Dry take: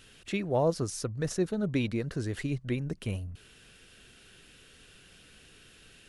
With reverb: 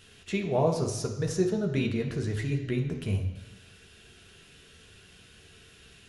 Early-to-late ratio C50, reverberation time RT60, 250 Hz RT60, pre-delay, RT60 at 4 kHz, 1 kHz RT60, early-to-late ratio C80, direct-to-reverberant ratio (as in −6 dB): 7.5 dB, 1.0 s, 1.0 s, 3 ms, 1.1 s, 1.1 s, 10.0 dB, 1.0 dB